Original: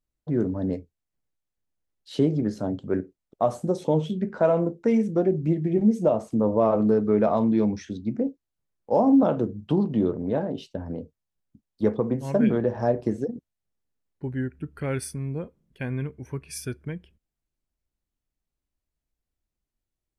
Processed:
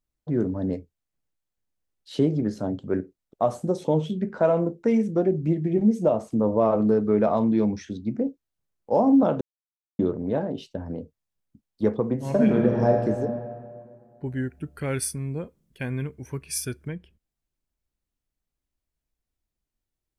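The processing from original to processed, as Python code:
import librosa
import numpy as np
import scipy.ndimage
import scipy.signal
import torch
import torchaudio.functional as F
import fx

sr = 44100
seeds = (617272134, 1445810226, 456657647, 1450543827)

y = fx.reverb_throw(x, sr, start_s=12.14, length_s=0.91, rt60_s=2.2, drr_db=2.0)
y = fx.high_shelf(y, sr, hz=4000.0, db=9.0, at=(14.26, 16.88))
y = fx.edit(y, sr, fx.silence(start_s=9.41, length_s=0.58), tone=tone)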